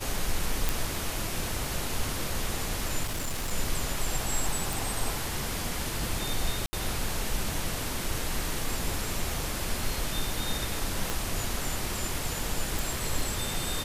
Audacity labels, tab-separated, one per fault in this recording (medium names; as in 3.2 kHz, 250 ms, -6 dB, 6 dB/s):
0.690000	0.690000	pop
3.030000	3.530000	clipped -27.5 dBFS
4.730000	4.730000	pop
6.660000	6.730000	dropout 70 ms
11.100000	11.100000	pop -13 dBFS
12.790000	12.790000	pop